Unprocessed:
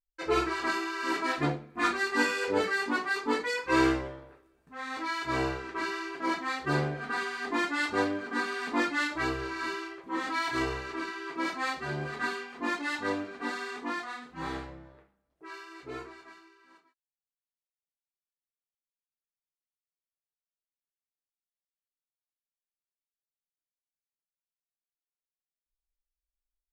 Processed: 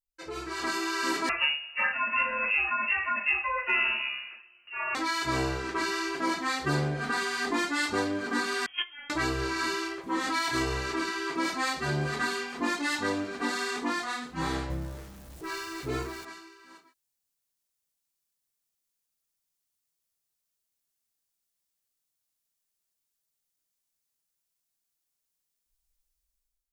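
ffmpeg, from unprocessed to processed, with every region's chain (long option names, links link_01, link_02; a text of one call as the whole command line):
ffmpeg -i in.wav -filter_complex "[0:a]asettb=1/sr,asplit=3[link_01][link_02][link_03];[link_01]atrim=end=1.294[link_04];[link_02]atrim=start=1.29:end=4.95,asetpts=PTS-STARTPTS,afade=type=in:duration=0.004:curve=qsin,afade=type=out:start_time=3.656:duration=0.004:curve=qsin,aecho=1:1:7.2:0.75,atrim=end_sample=161406,lowpass=frequency=2600:width_type=q:width=0.5098,lowpass=frequency=2600:width_type=q:width=0.6013,lowpass=frequency=2600:width_type=q:width=0.9,lowpass=frequency=2600:width_type=q:width=2.563,afreqshift=-3000[link_05];[link_03]atrim=start=4.946[link_06];[link_04][link_05]acrossfade=duration=0.004:curve1=hsin:curve2=qsin[link_07];[link_07][link_06]acrossfade=duration=0.004:curve1=qsin:curve2=hsin,asettb=1/sr,asplit=3[link_08][link_09][link_10];[link_08]atrim=end=8.664[link_11];[link_09]atrim=start=8.66:end=9.1,asetpts=PTS-STARTPTS,afade=type=in:duration=0.004:curve=qsin,afade=type=out:start_time=0.436:duration=0.004:curve=qsin,aeval=exprs='val(0)+0.5*0.00944*sgn(val(0))':channel_layout=same,agate=range=-24dB:threshold=-24dB:ratio=16:release=100:detection=peak,lowpass=frequency=3000:width_type=q:width=0.5098,lowpass=frequency=3000:width_type=q:width=0.6013,lowpass=frequency=3000:width_type=q:width=0.9,lowpass=frequency=3000:width_type=q:width=2.563,afreqshift=-3500[link_12];[link_10]atrim=start=9.096[link_13];[link_11][link_12]acrossfade=duration=0.004:curve1=hsin:curve2=qsin[link_14];[link_14][link_13]acrossfade=duration=0.004:curve1=qsin:curve2=hsin,asettb=1/sr,asplit=3[link_15][link_16][link_17];[link_15]atrim=end=14.704[link_18];[link_16]atrim=start=14.7:end=16.25,asetpts=PTS-STARTPTS,afade=type=in:duration=0.004:curve=qsin,afade=type=out:start_time=1.546:duration=0.004:curve=qsin,aeval=exprs='val(0)+0.5*0.00188*sgn(val(0))':channel_layout=same,lowshelf=frequency=170:gain=8.5[link_19];[link_17]atrim=start=16.246[link_20];[link_18][link_19]acrossfade=duration=0.004:curve1=hsin:curve2=qsin[link_21];[link_21][link_20]acrossfade=duration=0.004:curve1=qsin:curve2=hsin,acompressor=threshold=-34dB:ratio=3,bass=frequency=250:gain=4,treble=frequency=4000:gain=9,dynaudnorm=framelen=160:gausssize=7:maxgain=13.5dB,volume=-7.5dB" out.wav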